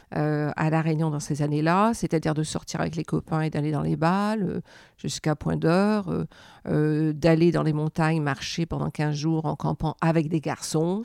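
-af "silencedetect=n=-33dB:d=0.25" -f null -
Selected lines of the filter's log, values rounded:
silence_start: 4.60
silence_end: 5.04 | silence_duration: 0.44
silence_start: 6.25
silence_end: 6.66 | silence_duration: 0.40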